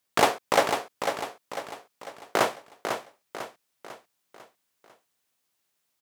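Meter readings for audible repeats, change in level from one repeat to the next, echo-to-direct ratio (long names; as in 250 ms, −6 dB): 5, −6.5 dB, −6.0 dB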